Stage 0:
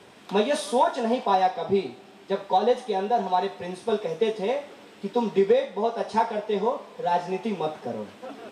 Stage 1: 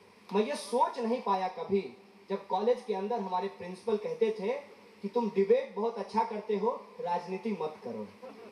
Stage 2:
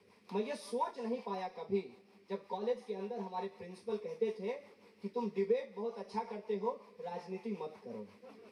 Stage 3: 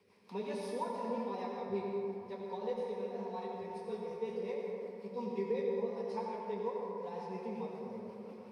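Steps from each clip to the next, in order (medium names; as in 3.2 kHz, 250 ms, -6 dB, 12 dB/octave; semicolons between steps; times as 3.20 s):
rippled EQ curve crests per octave 0.87, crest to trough 10 dB; trim -9 dB
rotary cabinet horn 5.5 Hz; trim -5 dB
reverberation RT60 3.4 s, pre-delay 68 ms, DRR -1 dB; trim -4 dB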